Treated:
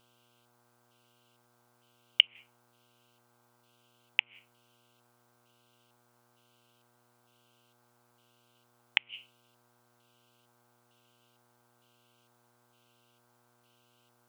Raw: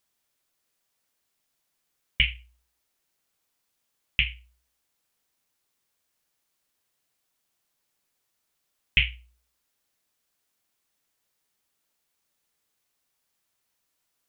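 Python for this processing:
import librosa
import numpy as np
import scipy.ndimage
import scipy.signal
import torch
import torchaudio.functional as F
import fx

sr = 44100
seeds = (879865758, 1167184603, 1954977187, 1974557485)

y = fx.gate_flip(x, sr, shuts_db=-11.0, range_db=-40)
y = fx.filter_lfo_highpass(y, sr, shape='square', hz=1.1, low_hz=840.0, high_hz=2900.0, q=5.8)
y = fx.dmg_buzz(y, sr, base_hz=120.0, harmonics=13, level_db=-73.0, tilt_db=-2, odd_only=False)
y = y * librosa.db_to_amplitude(2.0)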